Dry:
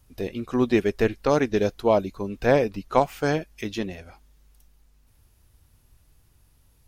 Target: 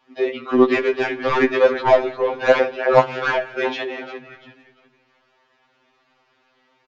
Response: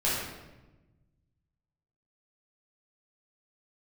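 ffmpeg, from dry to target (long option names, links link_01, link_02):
-filter_complex "[0:a]acrossover=split=240 4100:gain=0.0708 1 0.1[link_01][link_02][link_03];[link_01][link_02][link_03]amix=inputs=3:normalize=0,aeval=exprs='0.596*(cos(1*acos(clip(val(0)/0.596,-1,1)))-cos(1*PI/2))+0.015*(cos(7*acos(clip(val(0)/0.596,-1,1)))-cos(7*PI/2))':channel_layout=same,asplit=4[link_04][link_05][link_06][link_07];[link_05]adelay=347,afreqshift=-50,volume=-13dB[link_08];[link_06]adelay=694,afreqshift=-100,volume=-22.6dB[link_09];[link_07]adelay=1041,afreqshift=-150,volume=-32.3dB[link_10];[link_04][link_08][link_09][link_10]amix=inputs=4:normalize=0,asplit=2[link_11][link_12];[link_12]highpass=frequency=720:poles=1,volume=22dB,asoftclip=type=tanh:threshold=-4dB[link_13];[link_11][link_13]amix=inputs=2:normalize=0,lowpass=frequency=2300:poles=1,volume=-6dB,aresample=16000,aresample=44100,asplit=2[link_14][link_15];[1:a]atrim=start_sample=2205,adelay=11[link_16];[link_15][link_16]afir=irnorm=-1:irlink=0,volume=-27dB[link_17];[link_14][link_17]amix=inputs=2:normalize=0,afftfilt=real='re*2.45*eq(mod(b,6),0)':imag='im*2.45*eq(mod(b,6),0)':win_size=2048:overlap=0.75,volume=2.5dB"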